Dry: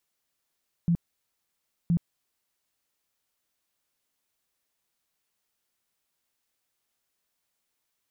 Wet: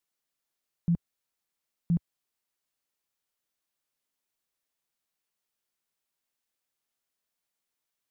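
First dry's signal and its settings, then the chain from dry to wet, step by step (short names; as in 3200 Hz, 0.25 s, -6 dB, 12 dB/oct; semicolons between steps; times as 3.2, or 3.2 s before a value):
tone bursts 170 Hz, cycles 12, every 1.02 s, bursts 2, -19.5 dBFS
bell 79 Hz -4.5 dB 0.91 oct; upward expander 1.5:1, over -35 dBFS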